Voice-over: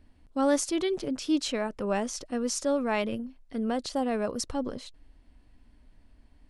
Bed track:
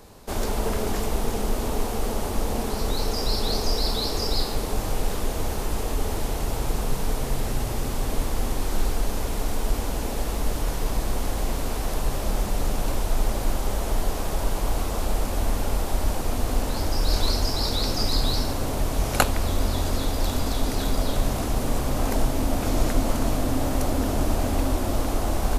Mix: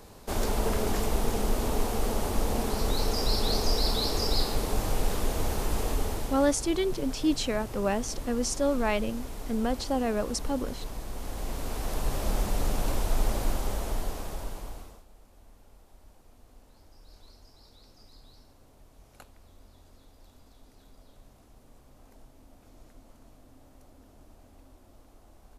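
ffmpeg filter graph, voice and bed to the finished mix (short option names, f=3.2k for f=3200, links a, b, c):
-filter_complex "[0:a]adelay=5950,volume=0.5dB[a];[1:a]volume=7dB,afade=t=out:st=5.88:d=0.66:silence=0.316228,afade=t=in:st=11.11:d=1.16:silence=0.354813,afade=t=out:st=13.35:d=1.69:silence=0.0375837[b];[a][b]amix=inputs=2:normalize=0"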